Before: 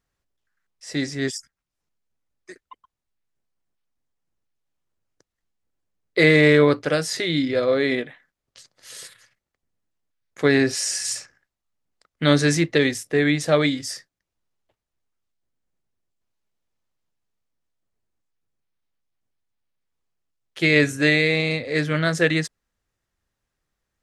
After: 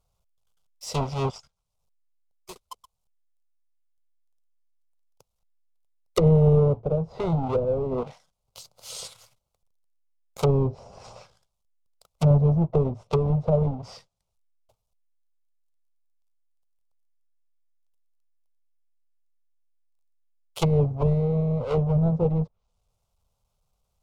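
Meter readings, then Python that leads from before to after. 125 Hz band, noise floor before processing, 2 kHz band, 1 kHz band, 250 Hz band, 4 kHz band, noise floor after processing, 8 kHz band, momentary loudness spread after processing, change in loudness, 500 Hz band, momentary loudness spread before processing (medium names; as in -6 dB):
+4.5 dB, -85 dBFS, under -25 dB, -1.0 dB, -4.5 dB, -15.0 dB, -79 dBFS, -14.0 dB, 17 LU, -3.5 dB, -4.0 dB, 14 LU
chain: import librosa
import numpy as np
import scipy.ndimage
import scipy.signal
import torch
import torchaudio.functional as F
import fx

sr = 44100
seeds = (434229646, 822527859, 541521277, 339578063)

y = fx.halfwave_hold(x, sr)
y = fx.fixed_phaser(y, sr, hz=730.0, stages=4)
y = fx.env_lowpass_down(y, sr, base_hz=360.0, full_db=-18.5)
y = y * librosa.db_to_amplitude(2.0)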